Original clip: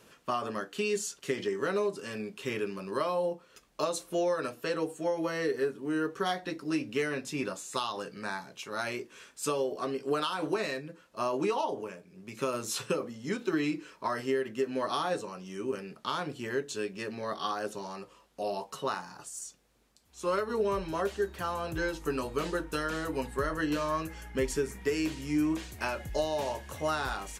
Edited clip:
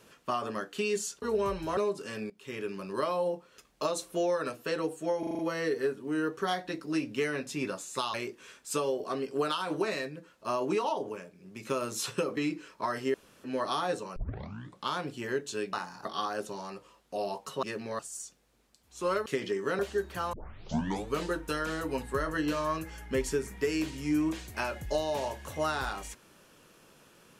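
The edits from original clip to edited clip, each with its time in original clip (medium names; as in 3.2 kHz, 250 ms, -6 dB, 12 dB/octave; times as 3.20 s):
1.22–1.75 s: swap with 20.48–21.03 s
2.28–2.78 s: fade in, from -18 dB
5.17 s: stutter 0.04 s, 6 plays
7.92–8.86 s: delete
13.09–13.59 s: delete
14.36–14.66 s: room tone
15.38 s: tape start 0.71 s
16.95–17.31 s: swap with 18.89–19.21 s
21.57 s: tape start 0.80 s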